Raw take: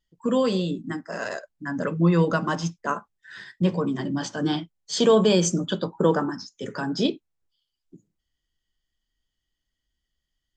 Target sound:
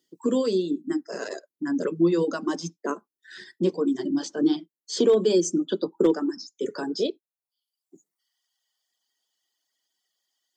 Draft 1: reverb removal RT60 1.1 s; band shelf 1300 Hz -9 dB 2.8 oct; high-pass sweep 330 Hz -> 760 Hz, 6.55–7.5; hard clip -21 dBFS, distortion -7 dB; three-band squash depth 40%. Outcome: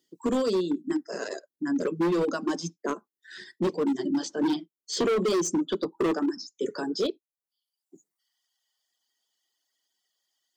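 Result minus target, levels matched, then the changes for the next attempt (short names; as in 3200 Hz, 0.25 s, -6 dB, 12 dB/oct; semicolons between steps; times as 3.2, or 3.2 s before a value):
hard clip: distortion +26 dB
change: hard clip -9.5 dBFS, distortion -33 dB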